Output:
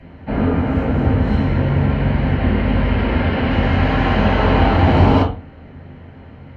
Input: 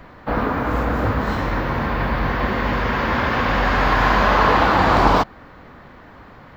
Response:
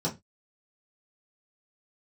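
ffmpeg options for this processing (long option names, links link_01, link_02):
-filter_complex "[0:a]asettb=1/sr,asplit=3[link_01][link_02][link_03];[link_01]atrim=end=2.344[link_04];[link_02]atrim=start=2.34:end=3.51,asetpts=PTS-STARTPTS,afade=type=in:duration=0.004:curve=qsin,afade=type=out:start_time=1.166:duration=0.004:curve=qsin,equalizer=frequency=6400:width=4.8:gain=-10.5[link_05];[link_03]atrim=start=3.506[link_06];[link_04][link_05]acrossfade=duration=0.004:curve1=hsin:curve2=qsin[link_07];[link_07][link_06]acrossfade=duration=0.004:curve1=qsin:curve2=hsin[link_08];[1:a]atrim=start_sample=2205,asetrate=23373,aresample=44100[link_09];[link_08][link_09]afir=irnorm=-1:irlink=0,volume=-12.5dB"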